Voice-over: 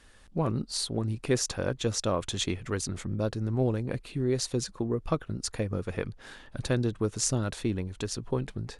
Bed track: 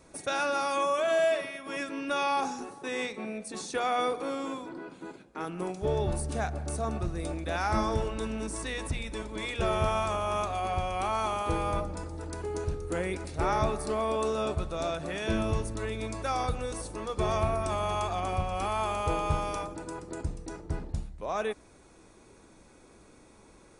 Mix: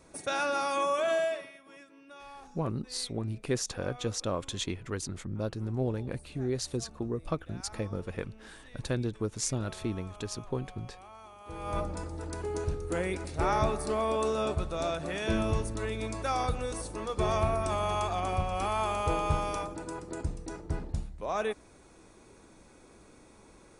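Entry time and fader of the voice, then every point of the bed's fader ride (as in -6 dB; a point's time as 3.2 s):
2.20 s, -4.0 dB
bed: 1.1 s -1 dB
1.89 s -20.5 dB
11.38 s -20.5 dB
11.8 s 0 dB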